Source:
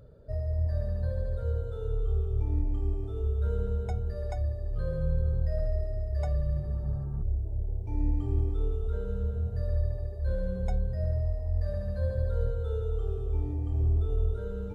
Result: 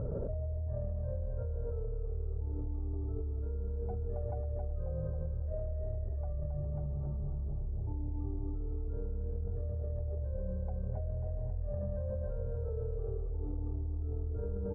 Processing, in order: LPF 1100 Hz 24 dB/oct; limiter -27.5 dBFS, peak gain reduction 10 dB; feedback echo 0.271 s, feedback 60%, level -4 dB; fast leveller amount 100%; gain -9 dB

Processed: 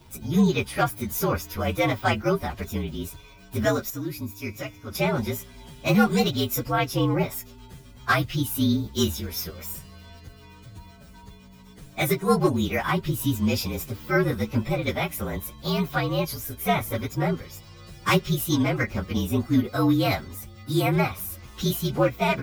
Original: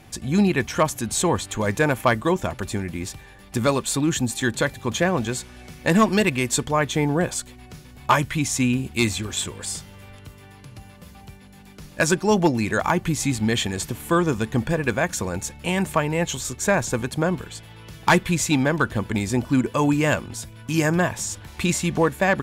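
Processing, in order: inharmonic rescaling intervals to 117%; 3.9–4.95 resonator 100 Hz, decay 1.6 s, harmonics odd, mix 60%

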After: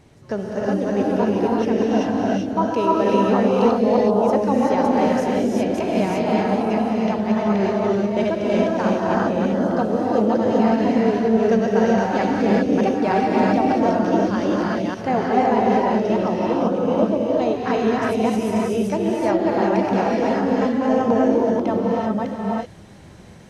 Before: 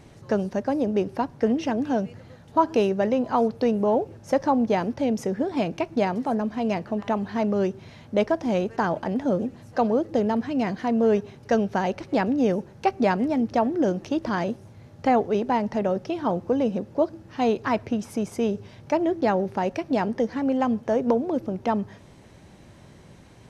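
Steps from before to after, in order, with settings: reverse delay 0.305 s, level -1 dB; non-linear reverb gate 0.41 s rising, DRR -4 dB; gain -2.5 dB

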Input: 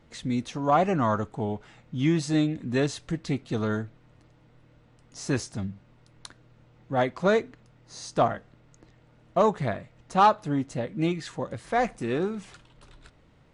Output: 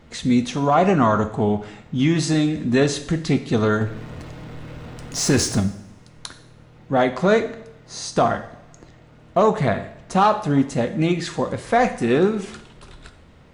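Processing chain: 3.81–5.6 power-law curve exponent 0.7; limiter -17.5 dBFS, peak gain reduction 8 dB; two-slope reverb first 0.64 s, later 1.6 s, from -18 dB, DRR 8 dB; gain +9 dB

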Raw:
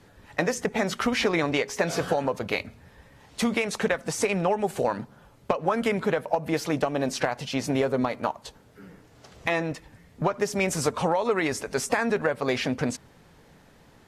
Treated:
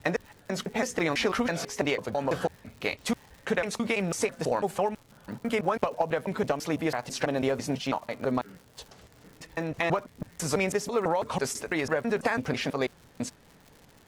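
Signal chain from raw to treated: slices in reverse order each 0.165 s, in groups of 3; crackle 150/s -39 dBFS; gain -2.5 dB

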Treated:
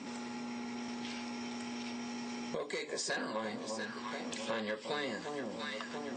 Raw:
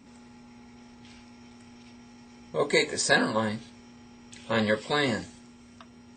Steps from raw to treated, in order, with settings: soft clip -19 dBFS, distortion -13 dB; HPF 240 Hz 12 dB/oct; echo with dull and thin repeats by turns 0.345 s, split 1000 Hz, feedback 53%, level -10 dB; compressor 5:1, threshold -49 dBFS, peak gain reduction 23.5 dB; LPF 7700 Hz 24 dB/oct; 0.88–2.9 three-band squash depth 40%; gain +11.5 dB

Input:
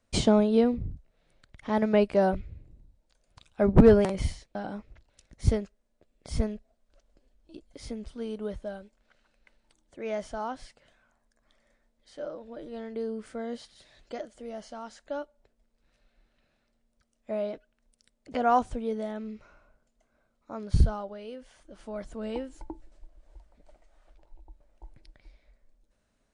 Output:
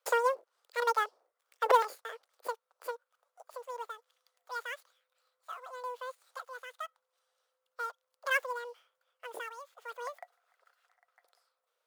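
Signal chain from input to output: switching dead time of 0.095 ms; wide varispeed 2.22×; elliptic high-pass 480 Hz, stop band 60 dB; gain -5 dB

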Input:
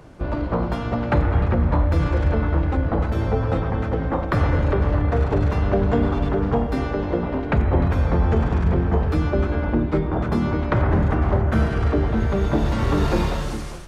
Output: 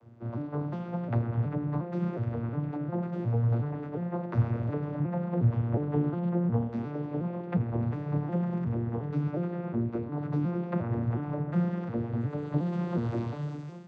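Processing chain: arpeggiated vocoder major triad, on A#2, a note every 0.36 s; 5–6.61 tone controls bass +3 dB, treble -9 dB; gain -6.5 dB

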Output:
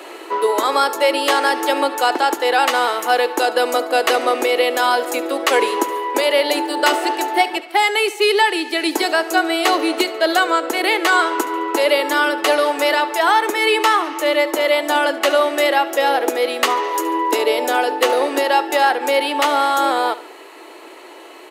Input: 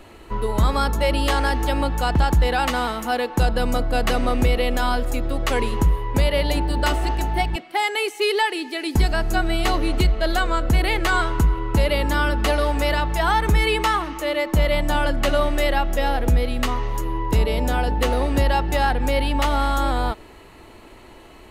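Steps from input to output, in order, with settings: steep high-pass 310 Hz 48 dB/oct; in parallel at +1.5 dB: vocal rider 0.5 s; on the sum: feedback echo 71 ms, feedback 43%, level -17 dB

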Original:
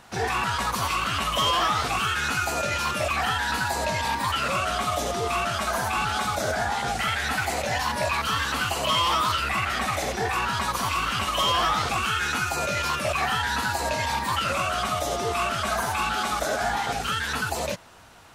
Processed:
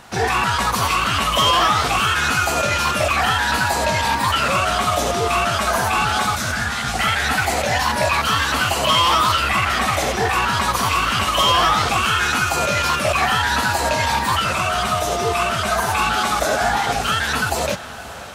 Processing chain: 6.35–6.94 band shelf 550 Hz -15 dB; 14.37–15.89 notch comb 280 Hz; diffused feedback echo 0.567 s, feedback 66%, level -16 dB; gain +7 dB

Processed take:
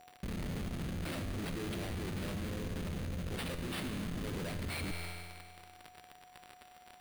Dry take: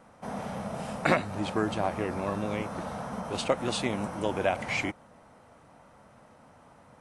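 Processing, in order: dynamic EQ 5600 Hz, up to +8 dB, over -52 dBFS, Q 0.99; in parallel at +1 dB: limiter -19.5 dBFS, peak gain reduction 11.5 dB; on the sum: Schmitt trigger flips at -25.5 dBFS; whine 730 Hz -46 dBFS; bell 880 Hz -10.5 dB 1.1 oct; crackle 210/s -39 dBFS; resonator 86 Hz, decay 1.8 s, harmonics all, mix 80%; reverse; compressor 10:1, threshold -47 dBFS, peak gain reduction 11 dB; reverse; sample-rate reducer 6500 Hz, jitter 0%; gain +11 dB

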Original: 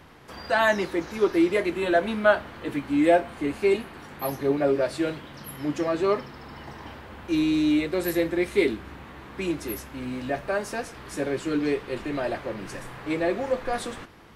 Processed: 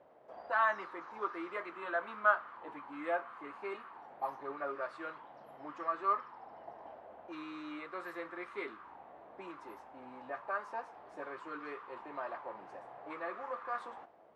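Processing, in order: auto-wah 590–1200 Hz, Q 4.8, up, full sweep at -23 dBFS; gain +1 dB

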